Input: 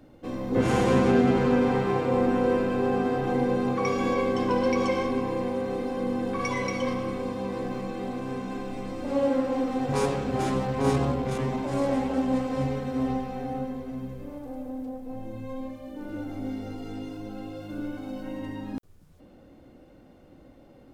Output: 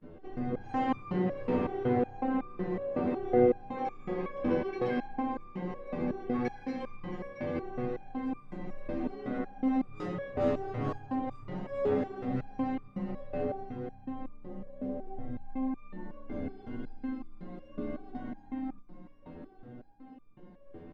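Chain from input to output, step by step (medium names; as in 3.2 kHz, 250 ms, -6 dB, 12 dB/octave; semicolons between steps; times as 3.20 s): gate with hold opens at -45 dBFS; low-pass 2.6 kHz 12 dB/octave; peaking EQ 410 Hz +6 dB 0.26 oct; comb 6.6 ms, depth 85%; dynamic bell 1 kHz, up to -7 dB, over -48 dBFS, Q 7.7; in parallel at +2.5 dB: compression 10:1, threshold -36 dBFS, peak gain reduction 22 dB; on the sum: saturation -11.5 dBFS, distortion -22 dB; harmony voices -5 st -1 dB; on a send: feedback delay 672 ms, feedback 52%, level -12 dB; on the sum: resonator arpeggio 5.4 Hz 84–1200 Hz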